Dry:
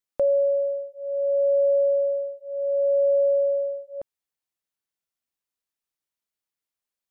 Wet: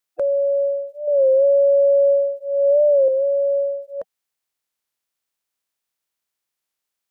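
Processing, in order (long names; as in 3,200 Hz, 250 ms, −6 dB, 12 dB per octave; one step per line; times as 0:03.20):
spectral magnitudes quantised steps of 30 dB
low-shelf EQ 380 Hz −5.5 dB
brickwall limiter −23 dBFS, peak gain reduction 5 dB
0:01.08–0:03.09: hollow resonant body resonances 220/520 Hz, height 10 dB, ringing for 65 ms
wow of a warped record 33 1/3 rpm, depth 100 cents
level +7.5 dB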